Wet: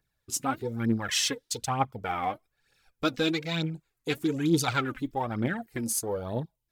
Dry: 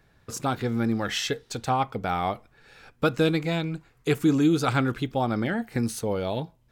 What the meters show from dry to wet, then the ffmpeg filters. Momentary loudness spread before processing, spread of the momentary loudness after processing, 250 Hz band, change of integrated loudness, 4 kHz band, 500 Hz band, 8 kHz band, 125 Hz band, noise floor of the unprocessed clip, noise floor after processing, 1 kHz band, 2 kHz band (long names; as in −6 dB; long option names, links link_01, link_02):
9 LU, 8 LU, −4.5 dB, −3.0 dB, +1.0 dB, −5.5 dB, +6.0 dB, −5.0 dB, −63 dBFS, −81 dBFS, −3.0 dB, −2.0 dB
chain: -af "crystalizer=i=3.5:c=0,afwtdn=0.02,aphaser=in_gain=1:out_gain=1:delay=4.1:decay=0.58:speed=1.1:type=triangular,volume=-6.5dB"